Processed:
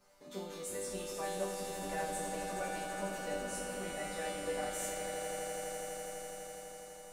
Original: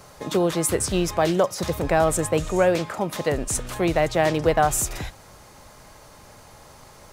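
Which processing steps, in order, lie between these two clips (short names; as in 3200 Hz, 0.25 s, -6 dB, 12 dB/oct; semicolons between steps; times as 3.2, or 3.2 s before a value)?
resonator bank G3 major, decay 0.75 s; swelling echo 83 ms, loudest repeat 8, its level -10 dB; gain +3 dB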